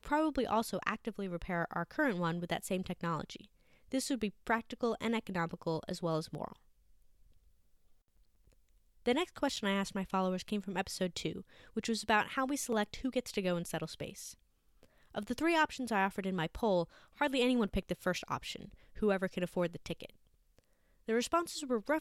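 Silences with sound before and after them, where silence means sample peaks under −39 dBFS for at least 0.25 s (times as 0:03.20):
0:03.36–0:03.92
0:06.52–0:09.06
0:11.40–0:11.77
0:14.31–0:15.15
0:16.84–0:17.21
0:18.65–0:18.97
0:20.05–0:21.09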